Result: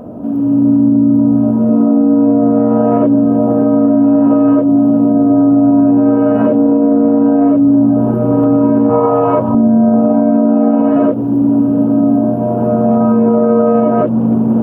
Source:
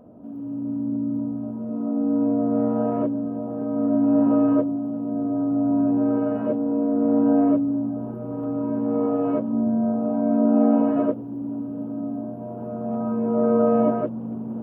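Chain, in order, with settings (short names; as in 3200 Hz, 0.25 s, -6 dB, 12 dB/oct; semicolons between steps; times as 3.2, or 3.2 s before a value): 8.89–9.55 fifteen-band EQ 100 Hz +7 dB, 250 Hz -11 dB, 1000 Hz +9 dB; compressor, threshold -23 dBFS, peak gain reduction 9 dB; maximiser +21 dB; gain -2 dB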